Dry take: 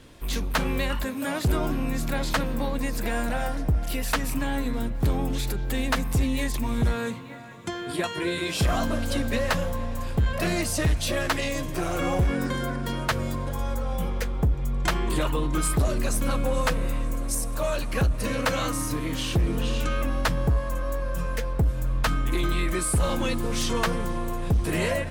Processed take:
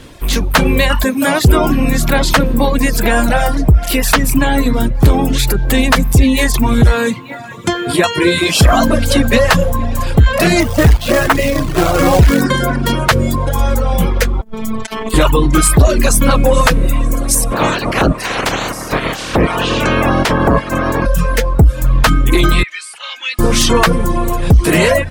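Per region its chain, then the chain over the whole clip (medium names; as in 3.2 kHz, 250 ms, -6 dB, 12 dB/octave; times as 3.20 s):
10.60–12.41 s: low-pass 1.9 kHz + companded quantiser 4-bit
14.41–15.14 s: high-pass 140 Hz 6 dB/octave + compressor with a negative ratio -32 dBFS, ratio -0.5 + robot voice 221 Hz
17.51–21.05 s: spectral peaks clipped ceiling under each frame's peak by 27 dB + low-pass 1.1 kHz 6 dB/octave
22.63–23.39 s: ladder band-pass 2.1 kHz, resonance 25% + resonant high shelf 2 kHz +7.5 dB, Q 1.5
whole clip: reverb removal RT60 0.86 s; level rider gain up to 3.5 dB; loudness maximiser +14.5 dB; trim -1 dB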